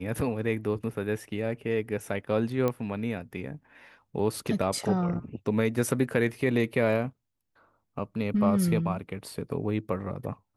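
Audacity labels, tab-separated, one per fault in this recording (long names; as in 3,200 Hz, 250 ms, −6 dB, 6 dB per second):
2.680000	2.680000	click −15 dBFS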